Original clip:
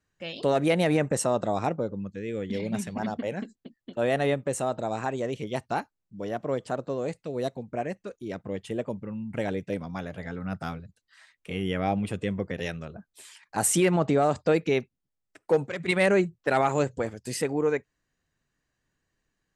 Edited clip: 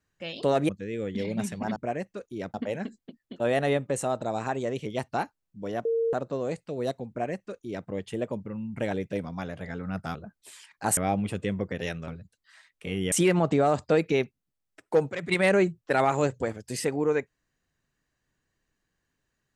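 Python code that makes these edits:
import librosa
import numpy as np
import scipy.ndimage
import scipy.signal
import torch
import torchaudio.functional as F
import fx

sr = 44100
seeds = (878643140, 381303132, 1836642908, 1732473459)

y = fx.edit(x, sr, fx.cut(start_s=0.69, length_s=1.35),
    fx.bleep(start_s=6.42, length_s=0.28, hz=458.0, db=-22.5),
    fx.duplicate(start_s=7.66, length_s=0.78, to_s=3.11),
    fx.swap(start_s=10.72, length_s=1.04, other_s=12.87, other_length_s=0.82), tone=tone)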